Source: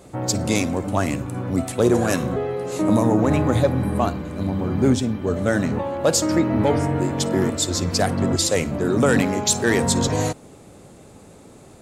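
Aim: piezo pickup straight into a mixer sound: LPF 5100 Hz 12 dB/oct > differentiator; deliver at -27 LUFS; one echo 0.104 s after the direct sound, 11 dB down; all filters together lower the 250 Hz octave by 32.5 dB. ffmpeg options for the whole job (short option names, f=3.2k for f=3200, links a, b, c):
-af "lowpass=5.1k,aderivative,equalizer=f=250:t=o:g=-5.5,aecho=1:1:104:0.282,volume=8.5dB"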